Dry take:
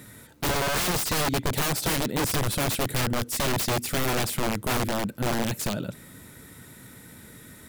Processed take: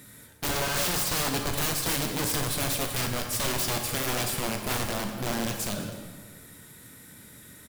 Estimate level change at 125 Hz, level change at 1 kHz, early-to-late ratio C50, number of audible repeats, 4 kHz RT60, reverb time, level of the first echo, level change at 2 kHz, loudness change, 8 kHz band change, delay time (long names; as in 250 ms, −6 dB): −4.0 dB, −3.5 dB, 4.5 dB, 1, 1.1 s, 1.5 s, −15.5 dB, −2.0 dB, −1.5 dB, +0.5 dB, 202 ms